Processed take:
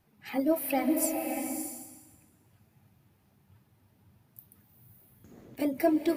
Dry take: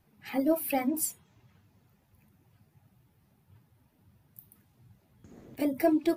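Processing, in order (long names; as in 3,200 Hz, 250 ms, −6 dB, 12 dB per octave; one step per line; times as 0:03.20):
low-shelf EQ 140 Hz −3.5 dB
slow-attack reverb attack 610 ms, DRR 3.5 dB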